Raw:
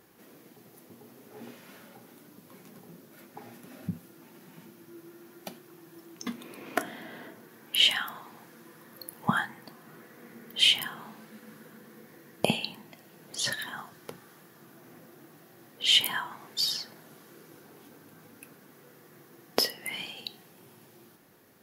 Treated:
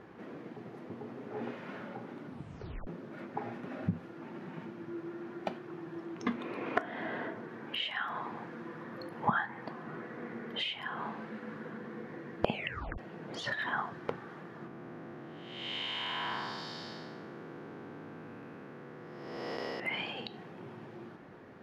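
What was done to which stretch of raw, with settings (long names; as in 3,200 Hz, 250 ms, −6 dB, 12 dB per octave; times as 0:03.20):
0:02.24: tape stop 0.63 s
0:12.52: tape stop 0.46 s
0:14.67–0:19.80: spectrum smeared in time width 467 ms
whole clip: dynamic equaliser 190 Hz, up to −5 dB, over −52 dBFS, Q 0.92; downward compressor 6 to 1, threshold −35 dBFS; low-pass filter 1,900 Hz 12 dB per octave; level +9 dB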